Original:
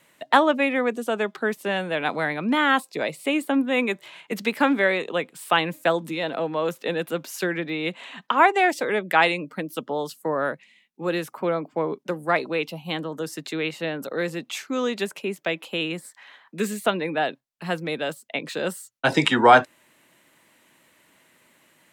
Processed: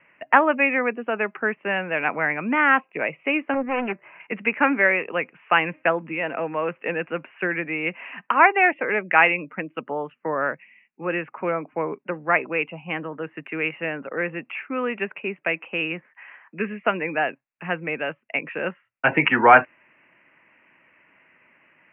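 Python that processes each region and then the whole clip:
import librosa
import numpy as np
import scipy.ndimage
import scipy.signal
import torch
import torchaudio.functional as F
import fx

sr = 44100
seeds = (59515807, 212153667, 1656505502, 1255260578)

y = fx.chain(x, sr, fx.lowpass(hz=1600.0, slope=12),
    fx.doppler_dist(depth_ms=0.77), at=(3.54, 4.2))
y = scipy.signal.sosfilt(scipy.signal.butter(16, 2700.0, 'lowpass', fs=sr, output='sos'), y)
y = fx.tilt_shelf(y, sr, db=-5.5, hz=1400.0)
y = F.gain(torch.from_numpy(y), 3.0).numpy()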